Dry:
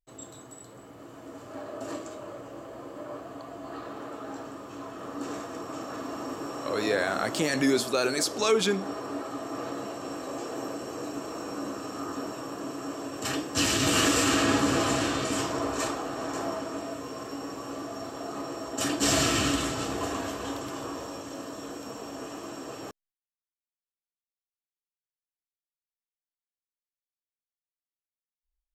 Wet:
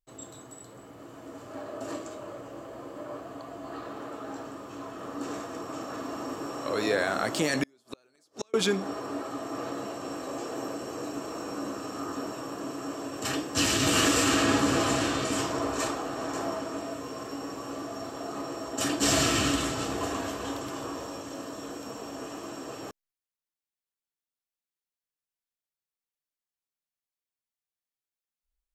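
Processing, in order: 7.63–8.54 s: inverted gate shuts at -18 dBFS, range -39 dB

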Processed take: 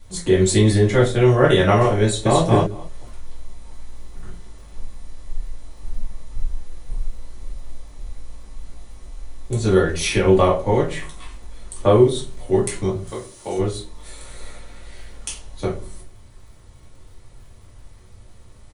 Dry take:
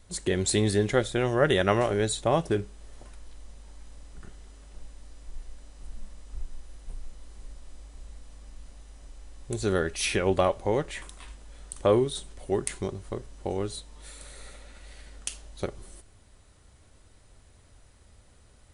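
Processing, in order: 13.07–13.58 s: RIAA curve recording; crackle 30 per s -48 dBFS; reverberation RT60 0.35 s, pre-delay 3 ms, DRR -5.5 dB; 2.03–2.44 s: echo throw 220 ms, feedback 10%, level -2 dB

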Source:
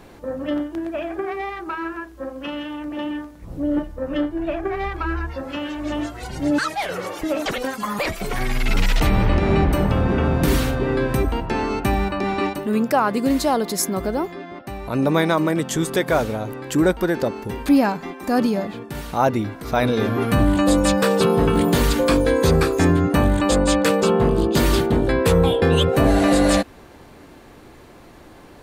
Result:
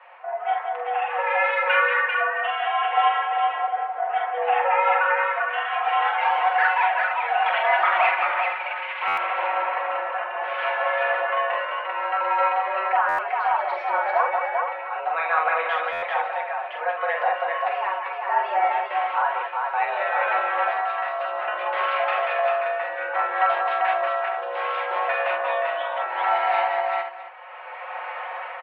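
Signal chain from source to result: 1.09–1.75 s: comb filter that takes the minimum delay 0.5 ms; comb 5.3 ms, depth 85%; level rider gain up to 14 dB; peak limiter -8 dBFS, peak gain reduction 7.5 dB; tremolo 0.64 Hz, depth 59%; multi-tap echo 45/81/185/393/462/661 ms -4/-20/-6.5/-3.5/-10.5/-17 dB; reverberation RT60 0.30 s, pre-delay 5 ms, DRR 9 dB; mistuned SSB +160 Hz 540–2500 Hz; buffer glitch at 9.07/13.08/15.92 s, samples 512, times 8; trim -1 dB

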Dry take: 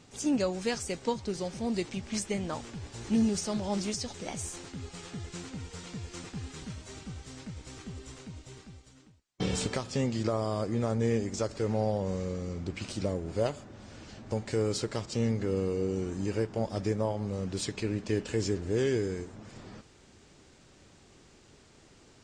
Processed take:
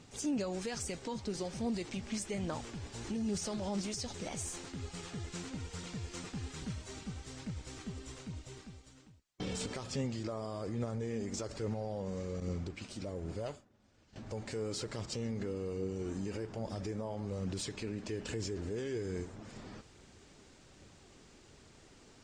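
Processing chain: peak limiter -28 dBFS, peak gain reduction 11 dB; phaser 1.2 Hz, delay 5 ms, feedback 25%; 12.40–14.16 s: expander -35 dBFS; trim -1.5 dB

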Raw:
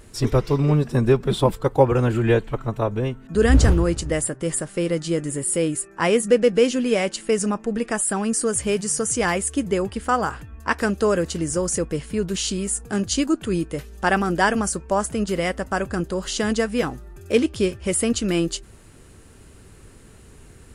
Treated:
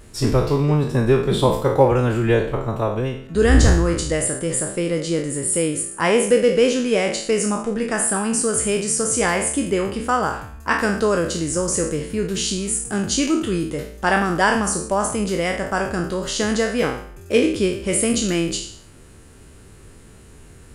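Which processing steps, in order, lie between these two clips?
spectral sustain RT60 0.58 s

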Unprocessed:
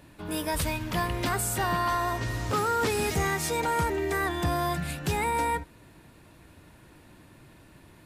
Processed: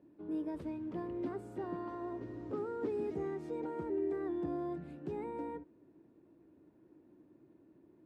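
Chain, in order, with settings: band-pass filter 330 Hz, Q 3; trim -2 dB

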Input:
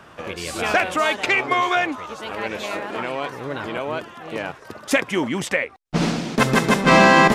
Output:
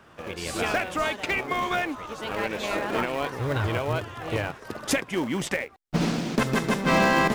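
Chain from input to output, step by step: recorder AGC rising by 11 dB/s; 3.39–4.48 s: resonant low shelf 140 Hz +8.5 dB, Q 3; in parallel at -11.5 dB: sample-rate reducer 1.3 kHz, jitter 20%; on the sum: trim -8.5 dB

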